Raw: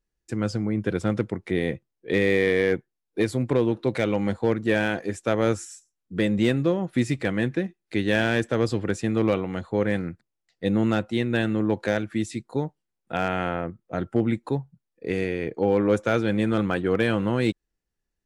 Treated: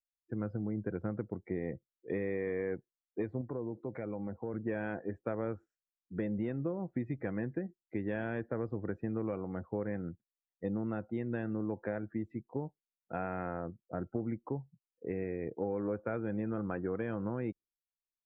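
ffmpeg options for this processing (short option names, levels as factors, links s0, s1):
-filter_complex "[0:a]asettb=1/sr,asplit=3[s0][s1][s2];[s0]atrim=end=3.414[s3];[s1]atrim=start=3.41:end=4.54,asetpts=PTS-STARTPTS,afade=t=in:d=0.004:c=qsin,afade=t=out:st=1.126:d=0.004:c=qsin,acompressor=threshold=0.0282:ratio=2:attack=3.2:release=140:knee=1:detection=peak[s4];[s2]atrim=start=4.536[s5];[s3][s4]acrossfade=d=0.004:c1=hsin:c2=qsin[s6];[s6][s5]acrossfade=d=0.004:c1=qsin:c2=hsin,lowpass=1500,afftdn=nr=22:nf=-44,acompressor=threshold=0.0708:ratio=6,volume=0.398"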